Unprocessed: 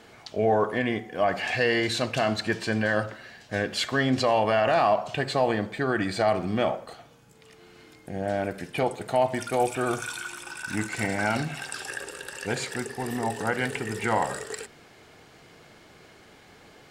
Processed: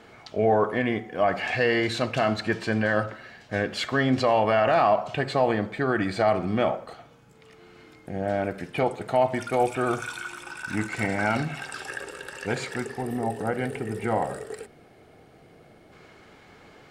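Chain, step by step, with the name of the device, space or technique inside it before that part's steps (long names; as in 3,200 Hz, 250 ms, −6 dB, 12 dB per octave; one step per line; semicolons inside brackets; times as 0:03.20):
gain on a spectral selection 0:13.01–0:15.92, 820–8,100 Hz −7 dB
inside a helmet (high-shelf EQ 3,900 Hz −8.5 dB; hollow resonant body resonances 1,300/2,200 Hz, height 6 dB)
level +1.5 dB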